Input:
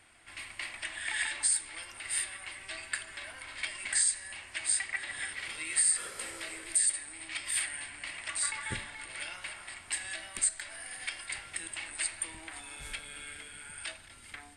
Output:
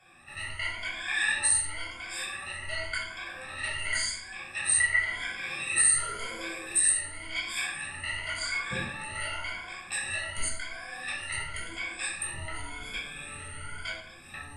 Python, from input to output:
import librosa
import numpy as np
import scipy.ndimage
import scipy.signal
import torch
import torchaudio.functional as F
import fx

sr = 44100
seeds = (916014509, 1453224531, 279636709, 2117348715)

y = fx.spec_ripple(x, sr, per_octave=1.8, drift_hz=0.92, depth_db=22)
y = fx.high_shelf(y, sr, hz=4300.0, db=-6.5)
y = fx.room_shoebox(y, sr, seeds[0], volume_m3=1000.0, walls='furnished', distance_m=6.7)
y = y * librosa.db_to_amplitude(-6.0)